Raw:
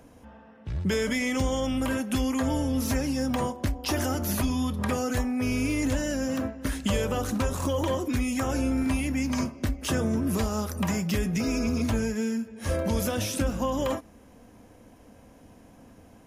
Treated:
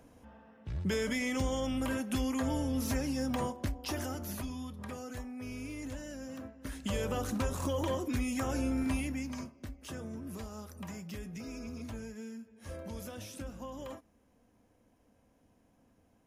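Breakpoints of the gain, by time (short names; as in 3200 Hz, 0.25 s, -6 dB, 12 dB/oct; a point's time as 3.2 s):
3.52 s -6 dB
4.75 s -15 dB
6.49 s -15 dB
7.08 s -6 dB
8.99 s -6 dB
9.53 s -16 dB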